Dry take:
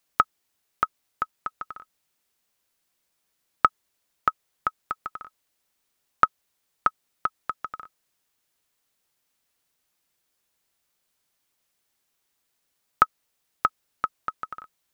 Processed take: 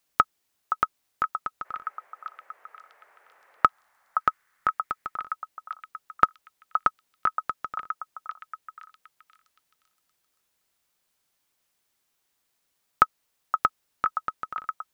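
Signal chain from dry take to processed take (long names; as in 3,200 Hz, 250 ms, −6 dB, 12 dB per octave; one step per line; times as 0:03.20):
0:01.64–0:03.65: noise in a band 440–2,000 Hz −61 dBFS
echo through a band-pass that steps 520 ms, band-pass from 950 Hz, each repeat 0.7 octaves, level −5.5 dB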